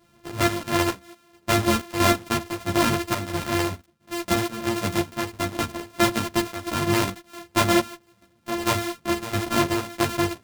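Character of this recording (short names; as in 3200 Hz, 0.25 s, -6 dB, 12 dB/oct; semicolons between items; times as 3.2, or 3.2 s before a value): a buzz of ramps at a fixed pitch in blocks of 128 samples; chopped level 1.5 Hz, depth 65%, duty 70%; a shimmering, thickened sound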